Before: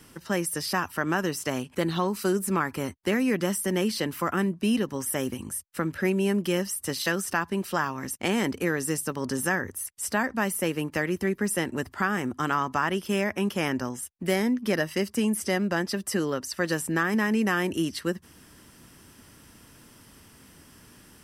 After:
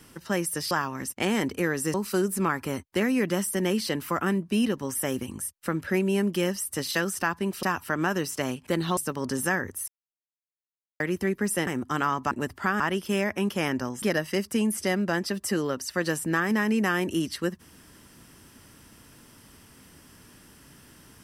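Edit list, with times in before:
0.71–2.05 s: swap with 7.74–8.97 s
9.88–11.00 s: mute
11.67–12.16 s: move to 12.80 s
14.02–14.65 s: delete

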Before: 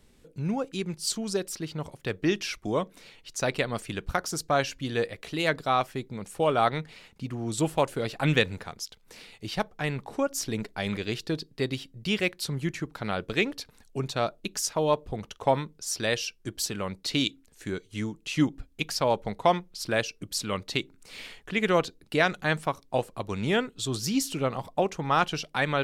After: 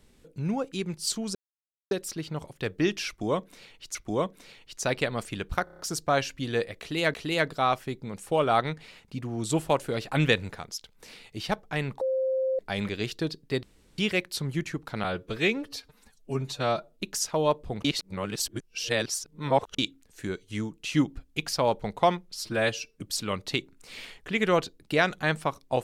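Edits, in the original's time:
1.35 s: insert silence 0.56 s
2.52–3.39 s: loop, 2 plays
4.21 s: stutter 0.03 s, 6 plays
5.22–5.56 s: loop, 2 plays
10.09–10.67 s: bleep 525 Hz -23.5 dBFS
11.71–12.06 s: room tone
13.12–14.43 s: stretch 1.5×
15.27–17.21 s: reverse
19.79–20.21 s: stretch 1.5×

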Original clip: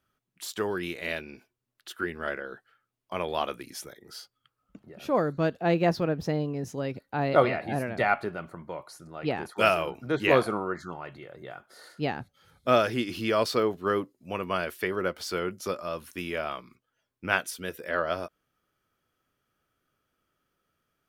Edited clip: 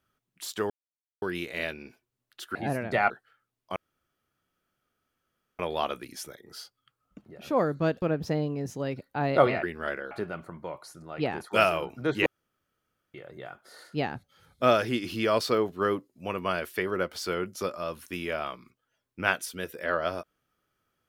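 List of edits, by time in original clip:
0.70 s: insert silence 0.52 s
2.03–2.51 s: swap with 7.61–8.16 s
3.17 s: insert room tone 1.83 s
5.60–6.00 s: delete
10.31–11.19 s: room tone

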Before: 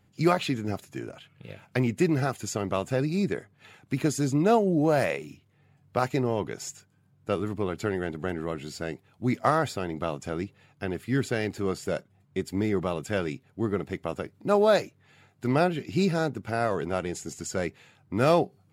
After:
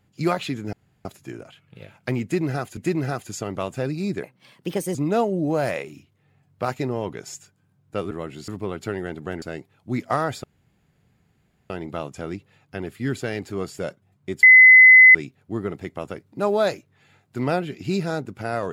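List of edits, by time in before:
0.73 s: insert room tone 0.32 s
1.91–2.45 s: loop, 2 plays
3.37–4.29 s: speed 128%
8.39–8.76 s: move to 7.45 s
9.78 s: insert room tone 1.26 s
12.51–13.23 s: bleep 2.03 kHz -6 dBFS

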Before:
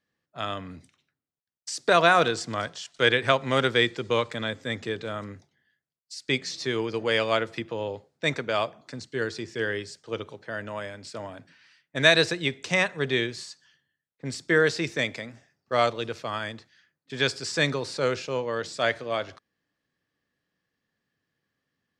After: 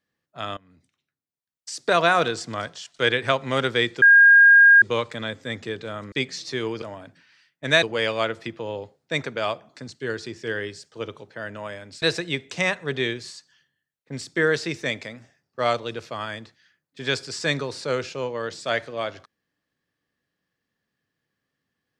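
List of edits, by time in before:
0.57–1.82 s: fade in, from -22.5 dB
4.02 s: add tone 1.62 kHz -8.5 dBFS 0.80 s
5.32–6.25 s: delete
11.14–12.15 s: move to 6.95 s

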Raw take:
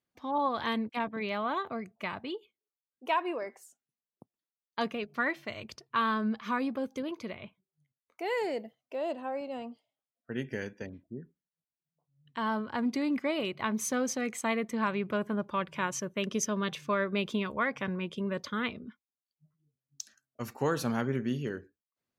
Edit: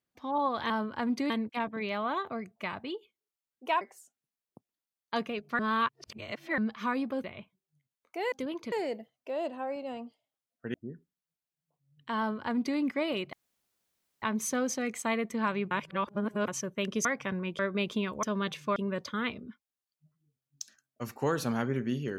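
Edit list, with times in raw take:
3.21–3.46 s: delete
5.24–6.23 s: reverse
6.89–7.29 s: move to 8.37 s
10.39–11.02 s: delete
12.46–13.06 s: copy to 0.70 s
13.61 s: insert room tone 0.89 s
15.10–15.87 s: reverse
16.44–16.97 s: swap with 17.61–18.15 s

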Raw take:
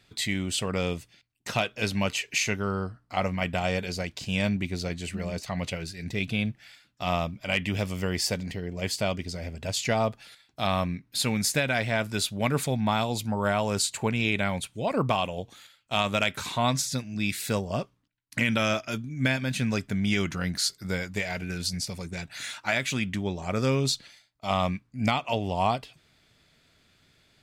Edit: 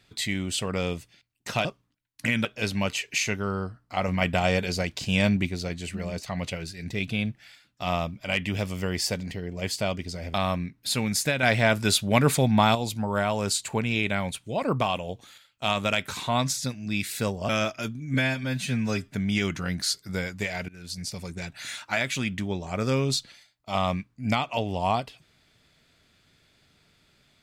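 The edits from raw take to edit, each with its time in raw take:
3.28–4.69 s: gain +4 dB
9.54–10.63 s: delete
11.72–13.04 s: gain +5.5 dB
17.78–18.58 s: move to 1.65 s
19.23–19.90 s: stretch 1.5×
21.44–21.96 s: fade in, from -21.5 dB

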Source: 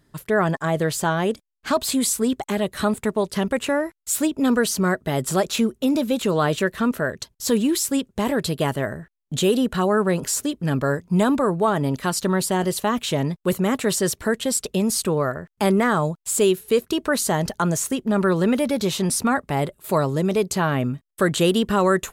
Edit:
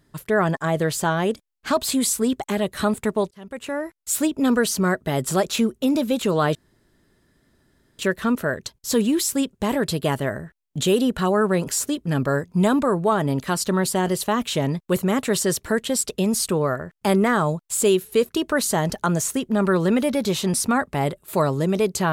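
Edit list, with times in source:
3.31–4.14 s: fade in
6.55 s: insert room tone 1.44 s

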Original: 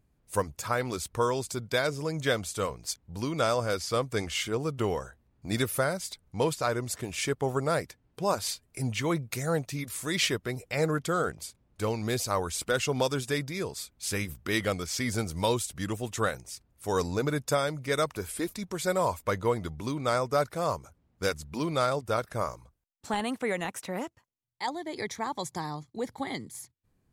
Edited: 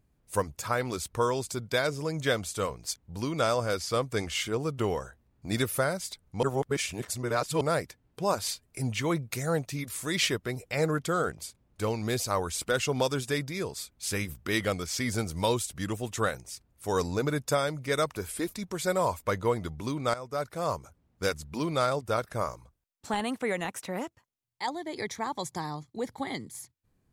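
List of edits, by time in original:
6.43–7.61 s: reverse
20.14–20.75 s: fade in, from -15 dB

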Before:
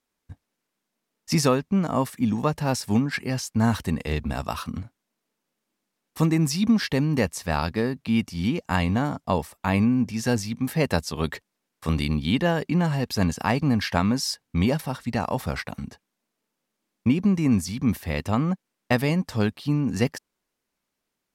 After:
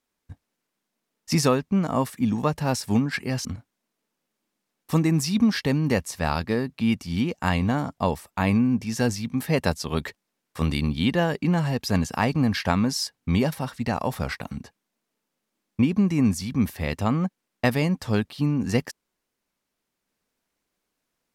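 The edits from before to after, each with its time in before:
3.45–4.72 s: delete

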